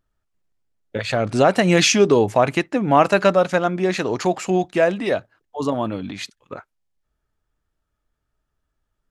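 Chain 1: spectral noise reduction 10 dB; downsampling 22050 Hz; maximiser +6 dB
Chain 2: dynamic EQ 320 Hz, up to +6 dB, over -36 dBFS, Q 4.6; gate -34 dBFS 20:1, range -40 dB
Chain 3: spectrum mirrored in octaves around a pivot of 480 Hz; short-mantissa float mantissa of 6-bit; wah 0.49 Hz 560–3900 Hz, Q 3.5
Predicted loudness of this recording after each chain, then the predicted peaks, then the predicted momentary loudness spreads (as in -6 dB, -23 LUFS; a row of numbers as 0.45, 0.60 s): -14.0, -18.0, -30.5 LUFS; -1.0, -1.5, -12.5 dBFS; 16, 14, 22 LU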